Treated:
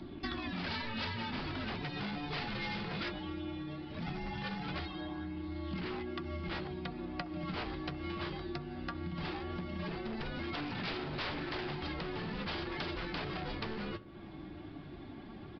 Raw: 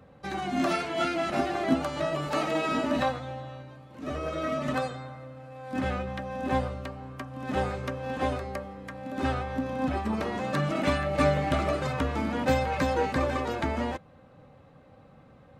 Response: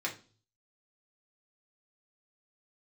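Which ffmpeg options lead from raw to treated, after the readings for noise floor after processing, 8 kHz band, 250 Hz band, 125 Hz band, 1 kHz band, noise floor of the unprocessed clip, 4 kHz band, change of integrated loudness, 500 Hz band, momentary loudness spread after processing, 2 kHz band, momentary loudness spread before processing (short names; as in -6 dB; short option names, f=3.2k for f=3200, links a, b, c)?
-48 dBFS, under -20 dB, -8.5 dB, -8.0 dB, -12.5 dB, -54 dBFS, -2.0 dB, -10.0 dB, -14.0 dB, 5 LU, -6.5 dB, 14 LU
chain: -filter_complex "[0:a]asplit=2[a][b];[b]adelay=66,lowpass=f=1.6k:p=1,volume=-17dB,asplit=2[c][d];[d]adelay=66,lowpass=f=1.6k:p=1,volume=0.5,asplit=2[e][f];[f]adelay=66,lowpass=f=1.6k:p=1,volume=0.5,asplit=2[g][h];[h]adelay=66,lowpass=f=1.6k:p=1,volume=0.5[i];[a][c][e][g][i]amix=inputs=5:normalize=0,flanger=delay=0.2:depth=8.8:regen=51:speed=0.18:shape=sinusoidal,aeval=exprs='0.0335*(abs(mod(val(0)/0.0335+3,4)-2)-1)':c=same,afreqshift=-440,acompressor=threshold=-47dB:ratio=10,highshelf=f=2.5k:g=10.5,aresample=11025,aresample=44100,bandreject=f=60:t=h:w=6,bandreject=f=120:t=h:w=6,volume=10dB"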